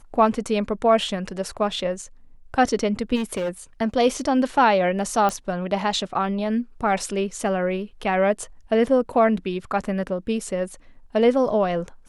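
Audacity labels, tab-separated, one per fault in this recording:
3.150000	3.490000	clipped -21.5 dBFS
5.290000	5.290000	pop -12 dBFS

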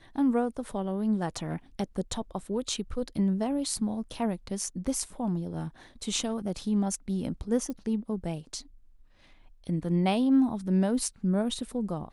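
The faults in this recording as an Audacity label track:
7.700000	7.700000	pop -24 dBFS

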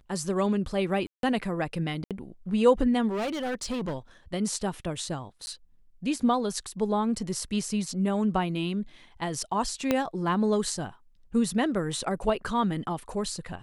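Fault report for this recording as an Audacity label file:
1.070000	1.230000	gap 0.162 s
2.040000	2.110000	gap 67 ms
3.090000	3.980000	clipped -27 dBFS
5.460000	5.470000	gap 10 ms
9.910000	9.910000	pop -10 dBFS

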